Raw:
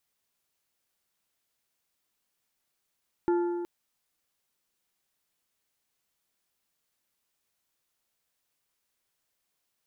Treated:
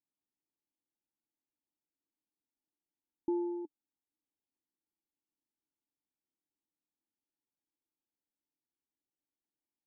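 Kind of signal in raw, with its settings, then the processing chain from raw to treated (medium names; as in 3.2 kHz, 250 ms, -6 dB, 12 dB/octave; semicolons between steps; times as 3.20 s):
metal hit plate, length 0.37 s, lowest mode 348 Hz, modes 4, decay 1.98 s, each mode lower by 9.5 dB, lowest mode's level -21 dB
cascade formant filter u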